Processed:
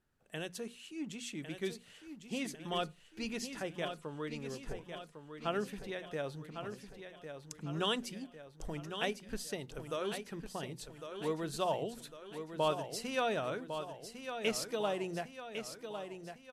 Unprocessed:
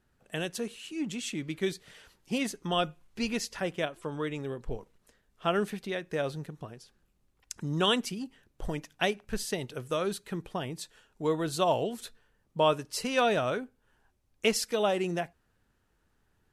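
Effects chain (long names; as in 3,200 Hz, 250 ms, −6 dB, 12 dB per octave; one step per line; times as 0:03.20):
mains-hum notches 60/120/180/240 Hz
repeating echo 1,103 ms, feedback 52%, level −8.5 dB
level −7.5 dB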